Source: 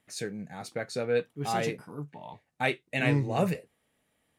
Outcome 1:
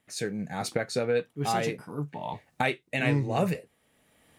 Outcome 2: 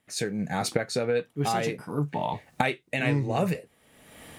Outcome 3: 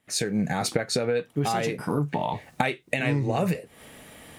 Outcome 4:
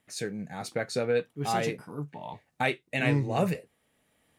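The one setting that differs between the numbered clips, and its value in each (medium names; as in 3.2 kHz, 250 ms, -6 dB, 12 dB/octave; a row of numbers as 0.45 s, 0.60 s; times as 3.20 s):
recorder AGC, rising by: 14 dB/s, 36 dB/s, 88 dB/s, 5.7 dB/s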